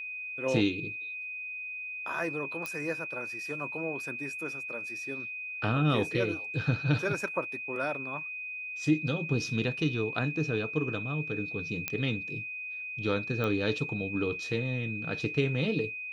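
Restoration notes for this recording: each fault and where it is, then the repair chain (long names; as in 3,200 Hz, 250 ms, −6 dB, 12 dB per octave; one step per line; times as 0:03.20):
whistle 2,500 Hz −36 dBFS
0:02.66: click −19 dBFS
0:11.88: click −13 dBFS
0:13.44: click −20 dBFS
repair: click removal
notch filter 2,500 Hz, Q 30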